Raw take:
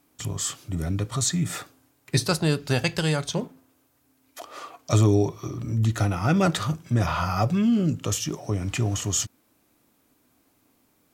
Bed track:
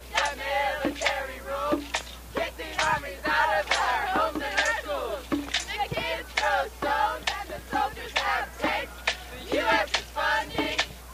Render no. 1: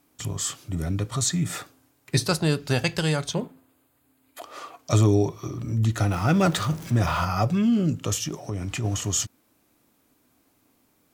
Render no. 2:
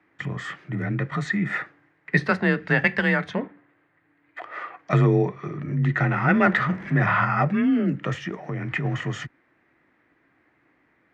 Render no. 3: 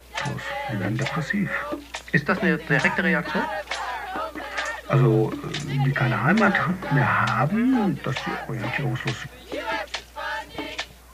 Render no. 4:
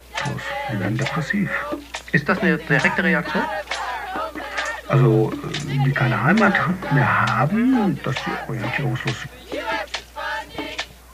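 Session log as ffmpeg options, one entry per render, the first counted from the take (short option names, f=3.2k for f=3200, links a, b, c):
-filter_complex "[0:a]asettb=1/sr,asplit=3[a][b][c];[a]atrim=end=3.334[d];[b]atrim=start=3.33:end=4.44,asetpts=PTS-STARTPTS,afade=t=in:d=0.004:c=qsin,afade=t=out:st=1.106:d=0.004:c=qsin,equalizer=f=5.7k:t=o:w=0.27:g=-15[e];[c]atrim=start=4.436[f];[d][e]acrossfade=d=0.004:c1=hsin:c2=qsin[g];[g][f]acrossfade=d=0.004:c1=qsin:c2=hsin,asettb=1/sr,asplit=3[h][i][j];[h]atrim=end=6.064[k];[i]atrim=start=6.06:end=7.25,asetpts=PTS-STARTPTS,afade=t=in:d=0.004:c=qsin,afade=t=out:st=1.186:d=0.004:c=qsin,aeval=exprs='val(0)+0.5*0.0178*sgn(val(0))':c=same[l];[j]atrim=start=7.246[m];[k][l]acrossfade=d=0.004:c1=hsin:c2=qsin[n];[n][m]acrossfade=d=0.004:c1=qsin:c2=hsin,asplit=3[o][p][q];[o]afade=t=out:st=8.27:d=0.02[r];[p]acompressor=threshold=-26dB:ratio=3:attack=3.2:release=140:knee=1:detection=peak,afade=t=in:st=8.27:d=0.02,afade=t=out:st=8.83:d=0.02[s];[q]afade=t=in:st=8.83:d=0.02[t];[r][s][t]amix=inputs=3:normalize=0"
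-af "afreqshift=28,lowpass=f=1.9k:t=q:w=6.2"
-filter_complex "[1:a]volume=-4.5dB[a];[0:a][a]amix=inputs=2:normalize=0"
-af "volume=3dB,alimiter=limit=-3dB:level=0:latency=1"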